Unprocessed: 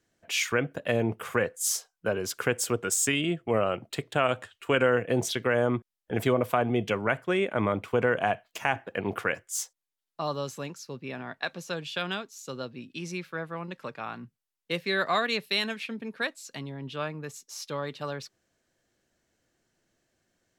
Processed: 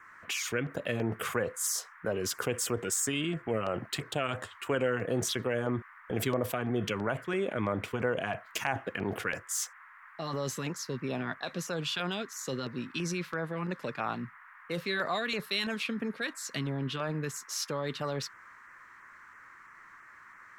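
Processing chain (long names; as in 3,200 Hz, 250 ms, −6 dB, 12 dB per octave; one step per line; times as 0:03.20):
in parallel at +1 dB: compressor whose output falls as the input rises −37 dBFS, ratio −1
on the sum: auto-filter notch saw down 3 Hz 430–4,600 Hz
noise in a band 1,000–2,000 Hz −48 dBFS
level −5.5 dB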